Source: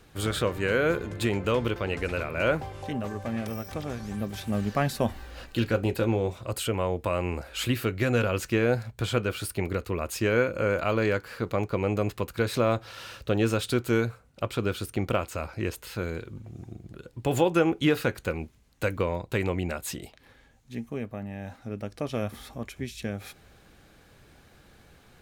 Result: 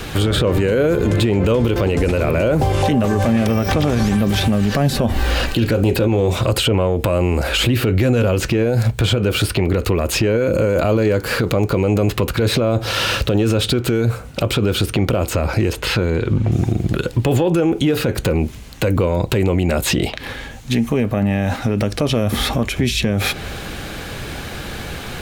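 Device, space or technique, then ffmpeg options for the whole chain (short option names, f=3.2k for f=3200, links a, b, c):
mastering chain: -filter_complex "[0:a]asettb=1/sr,asplit=3[a][b][c];[a]atrim=end=15.734[d];[b]atrim=start=15.73:end=16.52,asetpts=PTS-STARTPTS,afade=t=in:d=0.004:c=qsin,afade=t=out:st=0.786:d=0.004:c=qsin,aemphasis=mode=reproduction:type=50kf[e];[c]atrim=start=16.516[f];[d][e]acrossfade=d=0.004:c1=hsin:c2=qsin[g];[g][f]acrossfade=d=0.004:c1=qsin:c2=hsin,equalizer=f=3k:t=o:w=0.97:g=3.5,acrossover=split=690|5200[h][i][j];[h]acompressor=threshold=-27dB:ratio=4[k];[i]acompressor=threshold=-44dB:ratio=4[l];[j]acompressor=threshold=-56dB:ratio=4[m];[k][l][m]amix=inputs=3:normalize=0,acompressor=threshold=-32dB:ratio=3,asoftclip=type=tanh:threshold=-22.5dB,alimiter=level_in=34dB:limit=-1dB:release=50:level=0:latency=1,volume=-7.5dB"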